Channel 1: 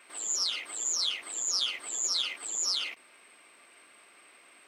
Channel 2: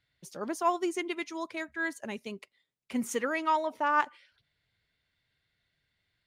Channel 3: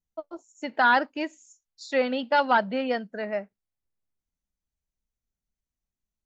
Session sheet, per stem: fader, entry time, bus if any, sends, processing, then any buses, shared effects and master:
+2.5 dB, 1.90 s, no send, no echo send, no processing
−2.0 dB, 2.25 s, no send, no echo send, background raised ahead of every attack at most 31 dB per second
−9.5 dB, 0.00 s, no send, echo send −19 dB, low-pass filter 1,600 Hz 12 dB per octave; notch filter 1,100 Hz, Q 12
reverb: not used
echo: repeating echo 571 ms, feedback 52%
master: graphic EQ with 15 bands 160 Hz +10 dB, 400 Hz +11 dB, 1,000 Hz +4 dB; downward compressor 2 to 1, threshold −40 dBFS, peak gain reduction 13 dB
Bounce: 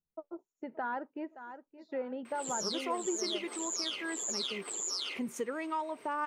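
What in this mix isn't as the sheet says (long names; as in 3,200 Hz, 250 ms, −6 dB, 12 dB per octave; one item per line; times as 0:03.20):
stem 1: entry 1.90 s → 2.25 s
stem 2: missing background raised ahead of every attack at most 31 dB per second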